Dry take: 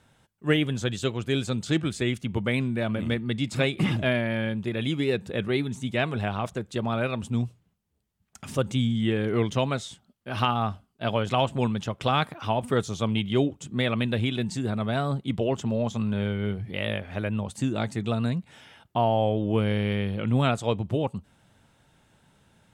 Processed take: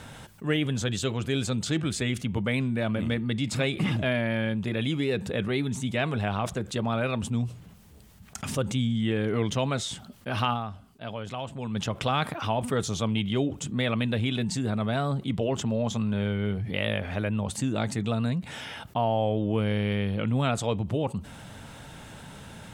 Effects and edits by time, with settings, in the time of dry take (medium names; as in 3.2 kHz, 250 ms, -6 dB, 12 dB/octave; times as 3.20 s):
10.53–11.77 s: dip -17.5 dB, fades 0.49 s exponential
whole clip: band-stop 360 Hz, Q 12; level flattener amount 50%; trim -4.5 dB